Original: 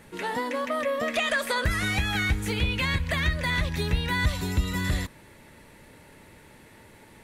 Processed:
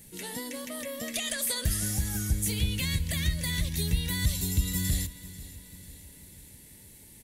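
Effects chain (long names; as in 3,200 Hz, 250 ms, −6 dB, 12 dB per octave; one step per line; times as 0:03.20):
notch filter 2,500 Hz, Q 29
healed spectral selection 0:01.69–0:02.33, 1,700–4,800 Hz both
drawn EQ curve 170 Hz 0 dB, 1,300 Hz −17 dB, 1,900 Hz −8 dB, 11,000 Hz +14 dB
on a send: repeating echo 491 ms, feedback 55%, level −17.5 dB
on the sum: level −1.5 dB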